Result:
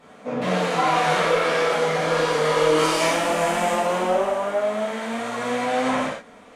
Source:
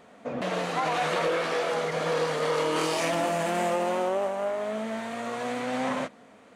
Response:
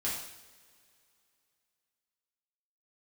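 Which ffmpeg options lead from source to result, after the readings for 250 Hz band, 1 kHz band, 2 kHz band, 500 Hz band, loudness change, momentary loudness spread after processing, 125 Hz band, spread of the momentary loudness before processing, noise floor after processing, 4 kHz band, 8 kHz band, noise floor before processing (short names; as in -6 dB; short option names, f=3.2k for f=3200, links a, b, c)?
+5.5 dB, +7.0 dB, +7.0 dB, +6.0 dB, +6.5 dB, 8 LU, +6.0 dB, 7 LU, -47 dBFS, +7.0 dB, +7.0 dB, -53 dBFS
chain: -filter_complex "[0:a]asubboost=boost=5.5:cutoff=52[a];[1:a]atrim=start_sample=2205,afade=t=out:st=0.15:d=0.01,atrim=end_sample=7056,asetrate=29988,aresample=44100[b];[a][b]afir=irnorm=-1:irlink=0"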